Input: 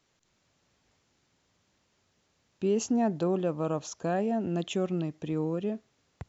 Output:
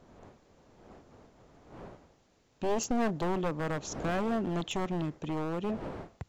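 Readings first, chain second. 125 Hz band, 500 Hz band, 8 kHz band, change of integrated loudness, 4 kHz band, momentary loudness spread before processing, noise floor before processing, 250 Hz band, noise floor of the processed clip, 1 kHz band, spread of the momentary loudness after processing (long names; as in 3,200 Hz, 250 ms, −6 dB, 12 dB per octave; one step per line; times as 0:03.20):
−2.0 dB, −3.5 dB, can't be measured, −3.0 dB, +1.0 dB, 6 LU, −73 dBFS, −3.5 dB, −68 dBFS, +1.5 dB, 13 LU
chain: wavefolder on the positive side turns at −27 dBFS
wind on the microphone 580 Hz −49 dBFS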